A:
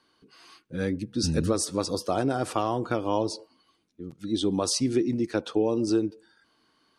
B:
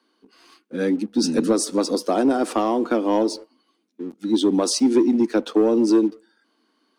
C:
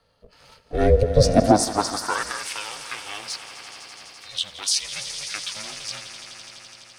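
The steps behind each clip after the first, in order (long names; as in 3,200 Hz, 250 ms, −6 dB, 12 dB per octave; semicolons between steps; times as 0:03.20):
Butterworth high-pass 220 Hz 48 dB per octave; low-shelf EQ 320 Hz +11.5 dB; leveller curve on the samples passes 1
echo that builds up and dies away 84 ms, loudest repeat 5, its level −14 dB; high-pass filter sweep 140 Hz → 2,300 Hz, 0:00.68–0:02.49; ring modulation 210 Hz; level +3.5 dB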